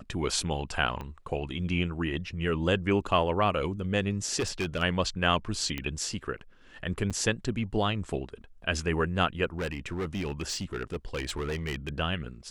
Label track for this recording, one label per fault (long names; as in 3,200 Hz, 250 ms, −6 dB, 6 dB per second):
1.010000	1.010000	click −24 dBFS
4.390000	4.830000	clipping −25 dBFS
5.780000	5.780000	click −18 dBFS
7.100000	7.110000	drop-out 6.8 ms
9.580000	11.890000	clipping −28 dBFS